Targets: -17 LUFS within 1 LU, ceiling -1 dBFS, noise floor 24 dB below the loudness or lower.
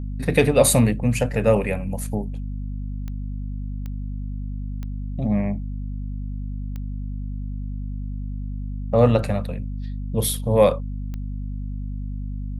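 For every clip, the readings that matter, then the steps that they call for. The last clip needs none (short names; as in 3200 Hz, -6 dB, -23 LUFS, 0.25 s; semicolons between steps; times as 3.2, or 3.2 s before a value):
clicks 5; hum 50 Hz; harmonics up to 250 Hz; hum level -26 dBFS; loudness -24.5 LUFS; peak -1.0 dBFS; loudness target -17.0 LUFS
-> de-click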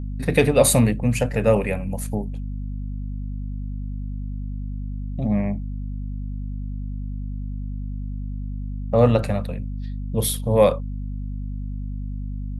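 clicks 0; hum 50 Hz; harmonics up to 250 Hz; hum level -26 dBFS
-> notches 50/100/150/200/250 Hz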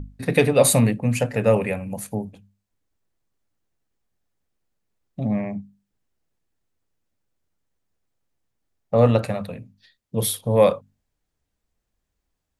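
hum none; loudness -21.0 LUFS; peak -2.0 dBFS; loudness target -17.0 LUFS
-> gain +4 dB; limiter -1 dBFS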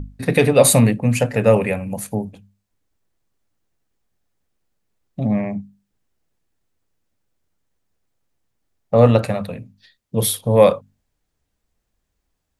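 loudness -17.5 LUFS; peak -1.0 dBFS; noise floor -75 dBFS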